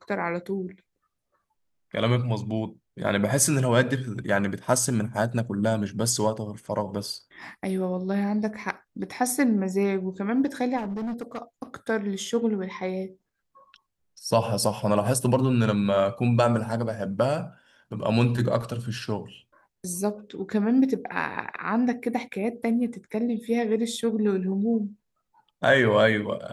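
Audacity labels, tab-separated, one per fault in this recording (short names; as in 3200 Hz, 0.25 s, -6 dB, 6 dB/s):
10.770000	11.380000	clipped -27.5 dBFS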